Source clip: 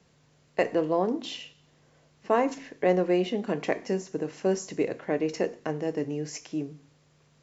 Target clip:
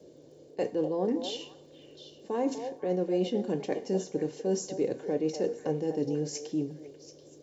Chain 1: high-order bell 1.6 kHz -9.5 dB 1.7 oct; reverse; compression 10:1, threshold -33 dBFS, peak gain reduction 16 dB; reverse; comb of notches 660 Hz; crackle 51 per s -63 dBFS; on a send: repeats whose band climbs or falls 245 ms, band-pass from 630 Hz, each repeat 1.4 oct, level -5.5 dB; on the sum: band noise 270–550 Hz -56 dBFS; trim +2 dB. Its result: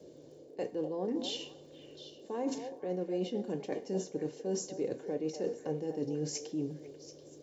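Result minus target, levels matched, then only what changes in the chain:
compression: peak gain reduction +6.5 dB
change: compression 10:1, threshold -26 dBFS, peak gain reduction 9.5 dB

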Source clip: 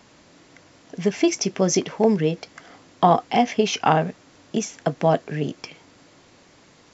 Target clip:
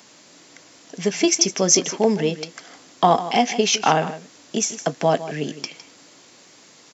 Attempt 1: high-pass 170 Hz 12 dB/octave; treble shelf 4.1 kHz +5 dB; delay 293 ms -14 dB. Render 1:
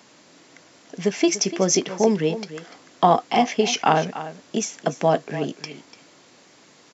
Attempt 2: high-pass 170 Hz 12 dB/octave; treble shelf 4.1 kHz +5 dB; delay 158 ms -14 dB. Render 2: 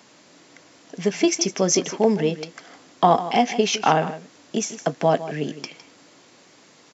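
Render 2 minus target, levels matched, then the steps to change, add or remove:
8 kHz band -4.0 dB
change: treble shelf 4.1 kHz +13.5 dB

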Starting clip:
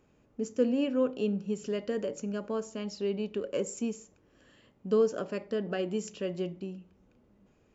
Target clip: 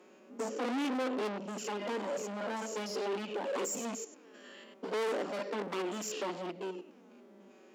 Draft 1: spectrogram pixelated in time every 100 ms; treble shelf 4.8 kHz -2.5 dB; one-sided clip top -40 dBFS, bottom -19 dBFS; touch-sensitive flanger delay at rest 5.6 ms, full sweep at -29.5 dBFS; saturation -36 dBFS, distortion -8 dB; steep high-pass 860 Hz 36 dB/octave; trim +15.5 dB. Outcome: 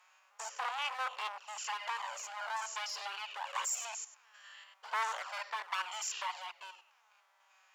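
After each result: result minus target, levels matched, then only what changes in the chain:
1 kHz band +4.5 dB; saturation: distortion -5 dB
change: steep high-pass 240 Hz 36 dB/octave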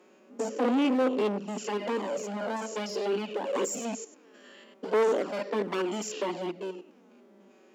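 saturation: distortion -5 dB
change: saturation -46.5 dBFS, distortion -3 dB

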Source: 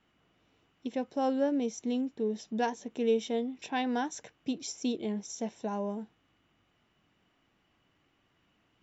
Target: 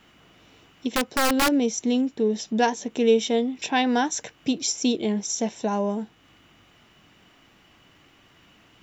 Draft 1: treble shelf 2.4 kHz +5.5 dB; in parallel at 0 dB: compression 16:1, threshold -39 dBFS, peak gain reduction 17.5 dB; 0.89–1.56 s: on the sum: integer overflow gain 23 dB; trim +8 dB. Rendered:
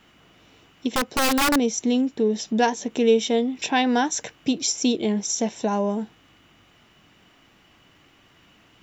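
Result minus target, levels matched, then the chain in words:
compression: peak gain reduction -10.5 dB
treble shelf 2.4 kHz +5.5 dB; in parallel at 0 dB: compression 16:1, threshold -50 dBFS, peak gain reduction 28 dB; 0.89–1.56 s: on the sum: integer overflow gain 23 dB; trim +8 dB

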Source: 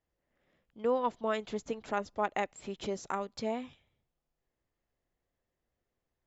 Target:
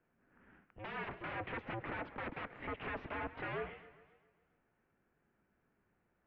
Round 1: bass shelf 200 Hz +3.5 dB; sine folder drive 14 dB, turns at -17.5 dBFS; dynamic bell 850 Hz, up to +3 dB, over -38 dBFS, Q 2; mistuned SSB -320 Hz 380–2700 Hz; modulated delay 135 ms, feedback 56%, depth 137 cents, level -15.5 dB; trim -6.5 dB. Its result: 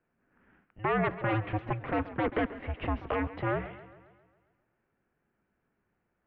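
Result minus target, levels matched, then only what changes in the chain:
sine folder: distortion -19 dB
change: sine folder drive 14 dB, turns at -29 dBFS

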